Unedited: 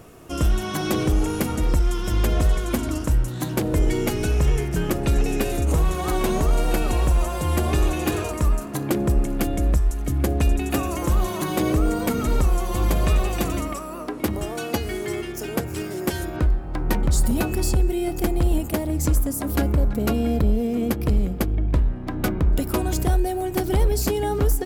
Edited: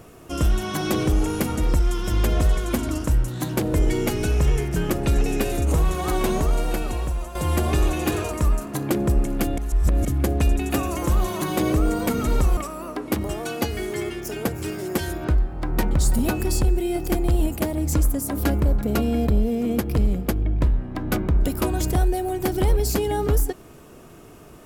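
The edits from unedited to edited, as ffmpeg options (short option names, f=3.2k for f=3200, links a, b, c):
-filter_complex "[0:a]asplit=5[a][b][c][d][e];[a]atrim=end=7.35,asetpts=PTS-STARTPTS,afade=t=out:st=6.27:d=1.08:silence=0.298538[f];[b]atrim=start=7.35:end=9.582,asetpts=PTS-STARTPTS,afade=t=in:d=0.004:c=hsin:silence=0.298538[g];[c]atrim=start=9.578:end=10.052,asetpts=PTS-STARTPTS,areverse[h];[d]atrim=start=10.048:end=12.572[i];[e]atrim=start=13.688[j];[f][g]concat=n=2:v=0:a=1[k];[k][h]acrossfade=d=0.004:c1=hsin:c2=hsin[l];[l][i]acrossfade=d=0.004:c1=hsin:c2=hsin[m];[m][j]acrossfade=d=0.004:c1=hsin:c2=hsin"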